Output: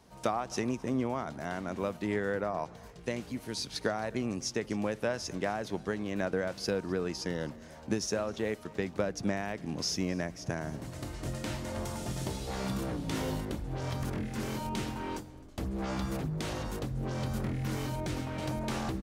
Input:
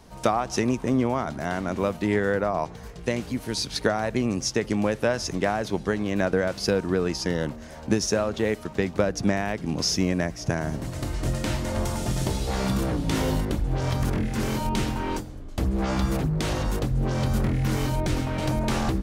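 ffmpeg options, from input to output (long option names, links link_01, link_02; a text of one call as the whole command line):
ffmpeg -i in.wav -filter_complex "[0:a]highpass=frequency=82:poles=1,asplit=2[link_01][link_02];[link_02]aecho=0:1:261:0.0668[link_03];[link_01][link_03]amix=inputs=2:normalize=0,volume=-8dB" out.wav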